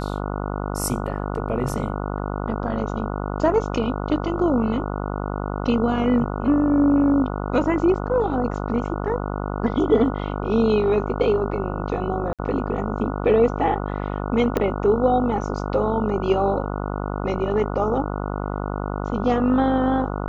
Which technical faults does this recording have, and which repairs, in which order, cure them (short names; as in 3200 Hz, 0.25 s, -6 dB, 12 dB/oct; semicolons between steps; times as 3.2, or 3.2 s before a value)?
buzz 50 Hz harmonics 29 -27 dBFS
12.33–12.39 gap 57 ms
14.57 pop -9 dBFS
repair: de-click; de-hum 50 Hz, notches 29; interpolate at 12.33, 57 ms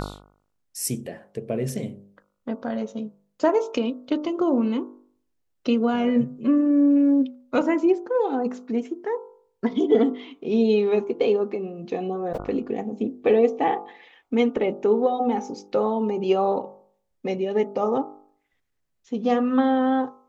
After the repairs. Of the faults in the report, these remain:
14.57 pop